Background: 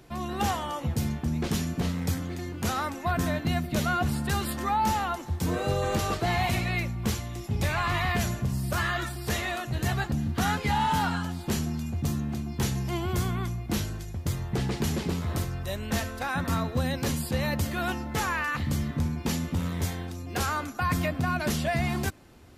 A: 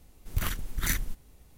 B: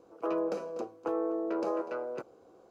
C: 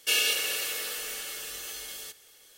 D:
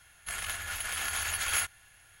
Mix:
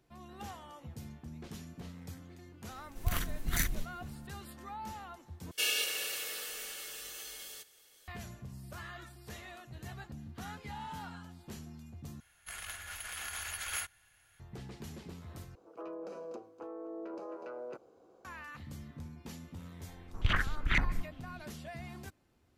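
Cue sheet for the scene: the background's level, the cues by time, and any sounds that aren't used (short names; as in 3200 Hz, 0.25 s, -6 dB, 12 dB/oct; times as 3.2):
background -18 dB
2.7 add A -3 dB
5.51 replace with C -6.5 dB
12.2 replace with D -8 dB
15.55 replace with B -4 dB + limiter -32 dBFS
19.88 add A -0.5 dB + stepped low-pass 8.9 Hz 900–3900 Hz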